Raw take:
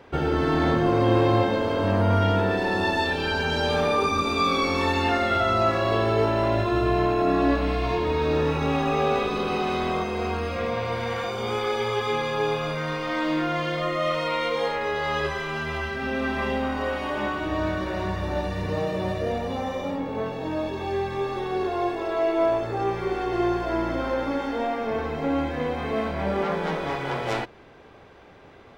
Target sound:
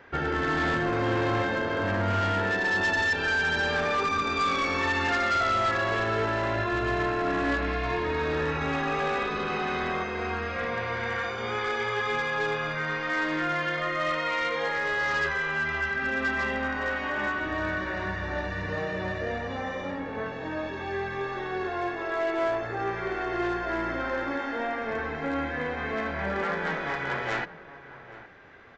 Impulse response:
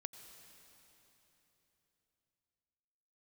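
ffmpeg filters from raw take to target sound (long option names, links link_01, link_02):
-filter_complex "[0:a]equalizer=frequency=1700:width=1.7:gain=12.5,aresample=16000,asoftclip=type=hard:threshold=-16dB,aresample=44100,asplit=2[link_01][link_02];[link_02]adelay=816.3,volume=-15dB,highshelf=frequency=4000:gain=-18.4[link_03];[link_01][link_03]amix=inputs=2:normalize=0,volume=-6dB"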